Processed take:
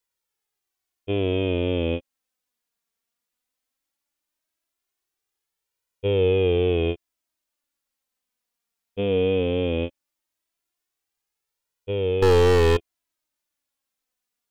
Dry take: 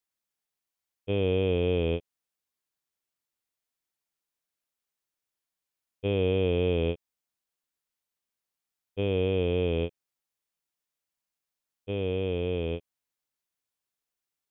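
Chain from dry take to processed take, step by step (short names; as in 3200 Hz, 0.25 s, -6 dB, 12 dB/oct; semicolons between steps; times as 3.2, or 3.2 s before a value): 12.22–12.77 sample leveller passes 5; flange 0.17 Hz, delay 2 ms, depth 2.4 ms, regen +25%; gain +8 dB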